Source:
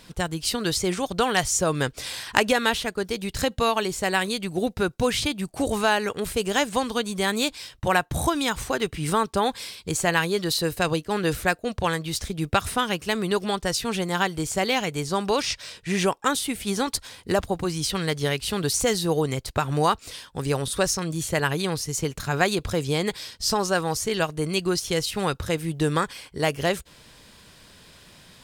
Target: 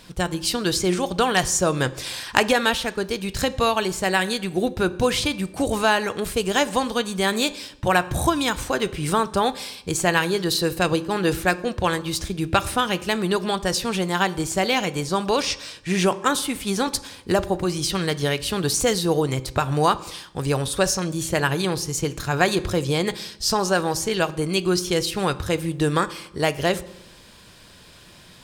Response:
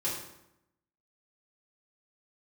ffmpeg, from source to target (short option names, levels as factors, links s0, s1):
-filter_complex "[0:a]bandreject=f=2000:w=28,asplit=2[s0][s1];[1:a]atrim=start_sample=2205,lowpass=7900[s2];[s1][s2]afir=irnorm=-1:irlink=0,volume=0.133[s3];[s0][s3]amix=inputs=2:normalize=0,volume=1.19"